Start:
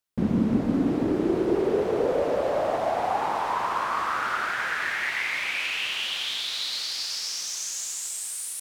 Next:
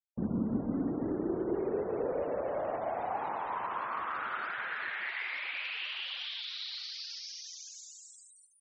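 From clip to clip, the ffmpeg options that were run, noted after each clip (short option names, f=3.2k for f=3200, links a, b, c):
-filter_complex "[0:a]acrossover=split=5800[a][b];[b]acompressor=threshold=-49dB:ratio=4:attack=1:release=60[c];[a][c]amix=inputs=2:normalize=0,afftfilt=real='re*gte(hypot(re,im),0.0158)':imag='im*gte(hypot(re,im),0.0158)':win_size=1024:overlap=0.75,volume=-9dB"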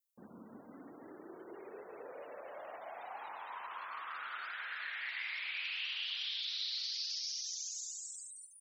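-af "aderivative,volume=7dB"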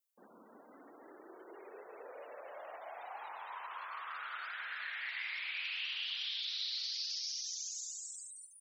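-af "highpass=410"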